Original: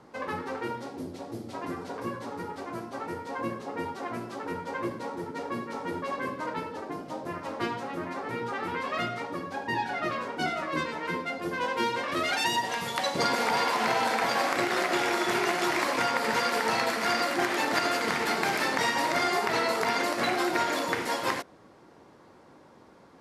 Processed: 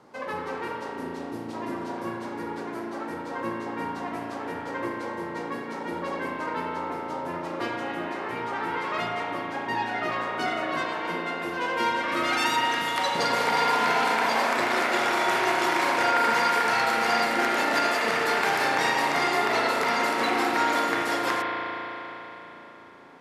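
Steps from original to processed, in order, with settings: low shelf 140 Hz -9.5 dB; spring tank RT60 3.9 s, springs 35 ms, chirp 65 ms, DRR -1.5 dB

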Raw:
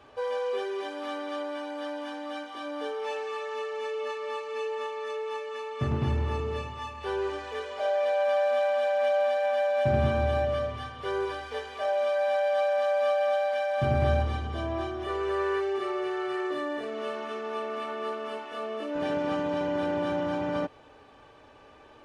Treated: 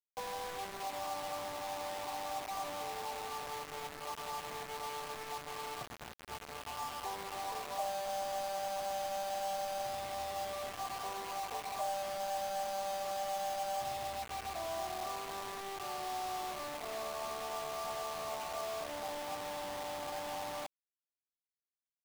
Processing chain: CVSD 16 kbps; 3.99–4.44 bell 420 Hz -6 dB 0.32 oct; compressor 10:1, threshold -35 dBFS, peak gain reduction 15 dB; vocal tract filter a; bit-crush 9-bit; gain +11.5 dB

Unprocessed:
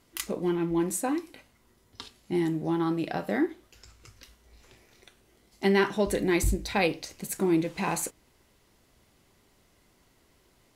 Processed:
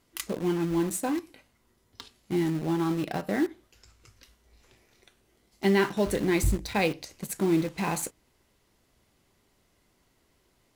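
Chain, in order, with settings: dynamic EQ 110 Hz, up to +5 dB, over -45 dBFS, Q 0.79; in parallel at -8 dB: bit-crush 5-bit; on the sum: gain -4 dB

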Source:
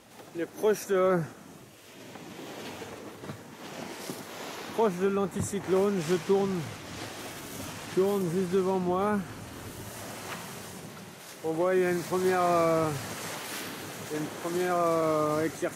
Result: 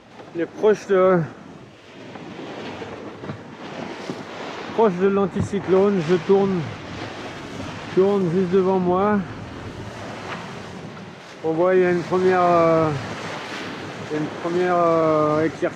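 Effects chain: air absorption 160 m; gain +9 dB

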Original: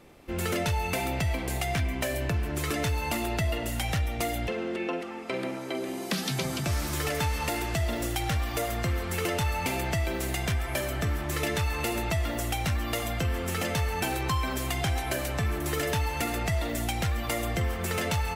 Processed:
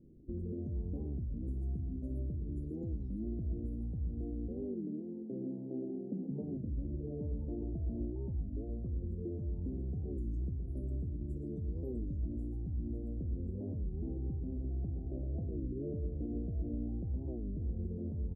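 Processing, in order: loudest bins only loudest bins 64; 5.5–8 band shelf 1100 Hz +9 dB 1.1 oct; inverse Chebyshev band-stop 1200–3000 Hz, stop band 80 dB; limiter -28.5 dBFS, peak gain reduction 7 dB; tapped delay 47/60 ms -16.5/-16.5 dB; reverb RT60 0.40 s, pre-delay 0.107 s, DRR 6.5 dB; dynamic EQ 130 Hz, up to -6 dB, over -42 dBFS, Q 1.1; LFO low-pass sine 0.11 Hz 600–3000 Hz; record warp 33 1/3 rpm, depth 250 cents; gain -2 dB

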